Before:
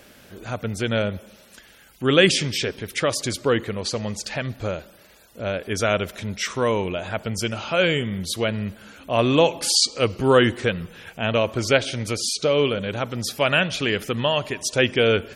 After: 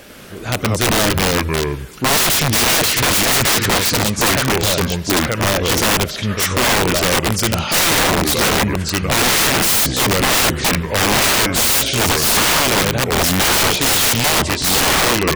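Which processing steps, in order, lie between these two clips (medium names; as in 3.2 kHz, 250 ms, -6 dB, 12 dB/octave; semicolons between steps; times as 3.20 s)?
fade out at the end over 1.19 s; ever faster or slower copies 98 ms, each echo -3 st, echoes 2; integer overflow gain 18.5 dB; trim +9 dB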